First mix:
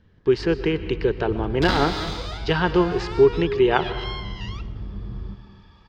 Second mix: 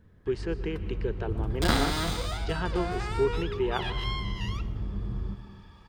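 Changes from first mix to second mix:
speech −11.0 dB
master: add high shelf with overshoot 7,000 Hz +12 dB, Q 1.5

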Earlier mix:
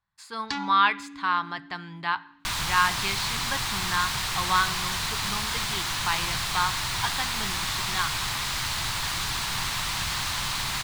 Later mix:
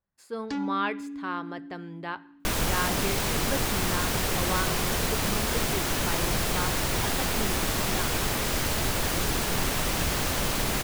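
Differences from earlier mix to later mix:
second sound +8.0 dB
master: add octave-band graphic EQ 125/250/500/1,000/2,000/4,000/8,000 Hz −6/+5/+12/−11/−5/−11/−5 dB

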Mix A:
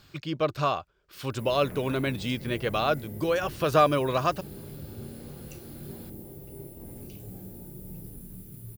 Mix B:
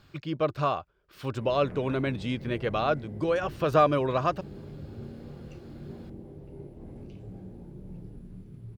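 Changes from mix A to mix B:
background: add high-frequency loss of the air 100 metres
master: add high-shelf EQ 3,500 Hz −11 dB

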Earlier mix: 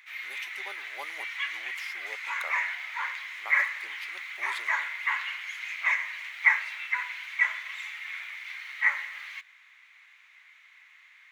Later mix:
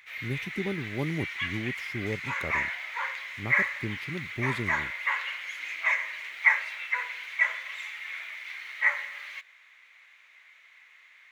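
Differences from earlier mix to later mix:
speech −3.5 dB
master: remove high-pass filter 770 Hz 24 dB per octave

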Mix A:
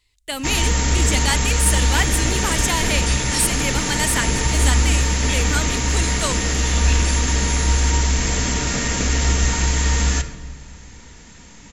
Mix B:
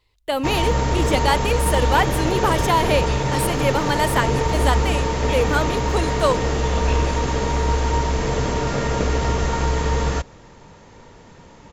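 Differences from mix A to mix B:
first sound: send off
second sound: add resonant band-pass 1,400 Hz, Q 0.53
master: add octave-band graphic EQ 125/500/1,000/2,000/8,000 Hz +5/+10/+7/−3/−12 dB

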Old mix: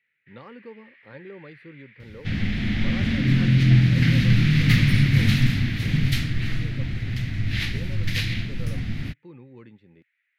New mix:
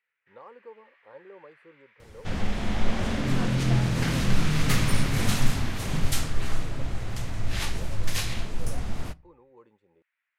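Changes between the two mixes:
speech −8.5 dB
second sound: send on
master: add octave-band graphic EQ 125/250/500/1,000/2,000/4,000/8,000 Hz −12/−8/+7/+12/−12/−7/+11 dB

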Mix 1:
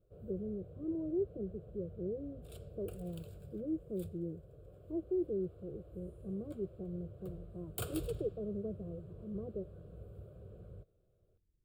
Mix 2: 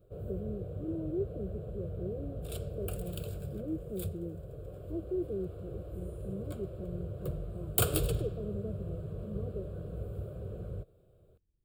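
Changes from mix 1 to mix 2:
background +11.5 dB
master: add high-shelf EQ 10,000 Hz +4 dB

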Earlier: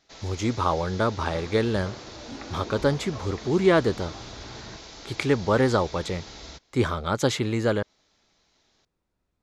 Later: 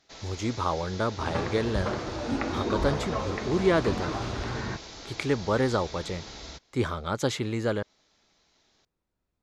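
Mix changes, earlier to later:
speech −4.0 dB
second sound +10.5 dB

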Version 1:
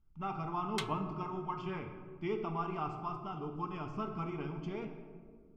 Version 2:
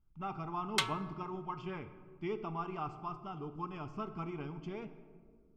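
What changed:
speech: send −6.5 dB
background +7.5 dB

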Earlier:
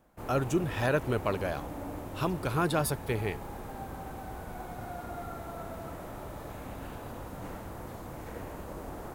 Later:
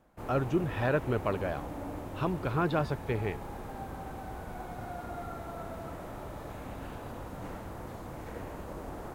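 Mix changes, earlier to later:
speech: add high-frequency loss of the air 200 metres
master: add high-shelf EQ 8,700 Hz −6.5 dB

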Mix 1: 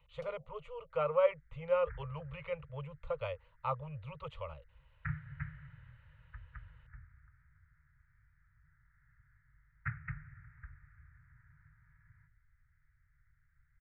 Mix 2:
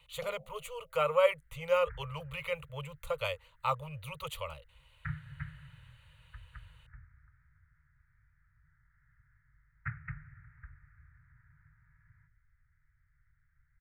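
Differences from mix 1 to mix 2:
speech: remove head-to-tape spacing loss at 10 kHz 42 dB
first sound +9.0 dB

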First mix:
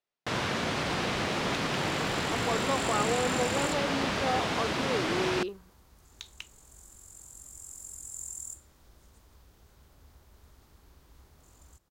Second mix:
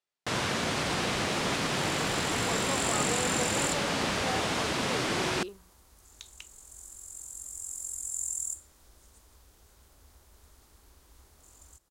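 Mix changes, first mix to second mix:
speech −5.5 dB
second sound: add parametric band 140 Hz −7 dB 1.3 octaves
master: add parametric band 9,200 Hz +8 dB 1.3 octaves

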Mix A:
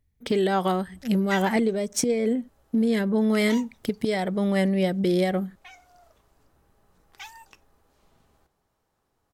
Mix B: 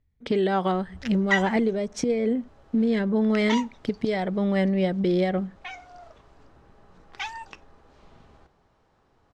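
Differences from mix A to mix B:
background +10.5 dB
master: add high-frequency loss of the air 130 metres

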